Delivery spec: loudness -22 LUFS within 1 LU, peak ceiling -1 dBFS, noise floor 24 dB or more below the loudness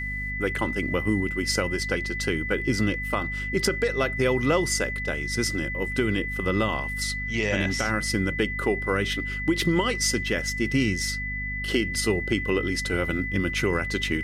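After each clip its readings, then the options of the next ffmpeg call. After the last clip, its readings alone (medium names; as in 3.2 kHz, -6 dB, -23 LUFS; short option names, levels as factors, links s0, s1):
hum 50 Hz; highest harmonic 250 Hz; hum level -32 dBFS; steady tone 2 kHz; tone level -30 dBFS; loudness -25.5 LUFS; peak level -10.5 dBFS; loudness target -22.0 LUFS
-> -af "bandreject=f=50:t=h:w=6,bandreject=f=100:t=h:w=6,bandreject=f=150:t=h:w=6,bandreject=f=200:t=h:w=6,bandreject=f=250:t=h:w=6"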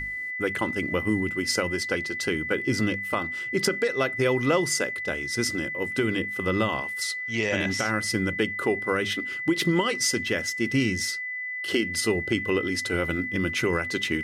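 hum not found; steady tone 2 kHz; tone level -30 dBFS
-> -af "bandreject=f=2000:w=30"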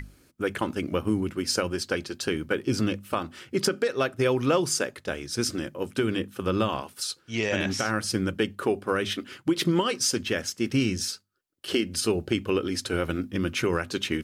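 steady tone not found; loudness -27.5 LUFS; peak level -11.5 dBFS; loudness target -22.0 LUFS
-> -af "volume=1.88"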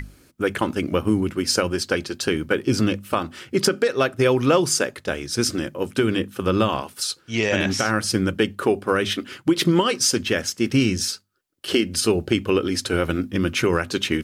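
loudness -22.0 LUFS; peak level -6.0 dBFS; noise floor -55 dBFS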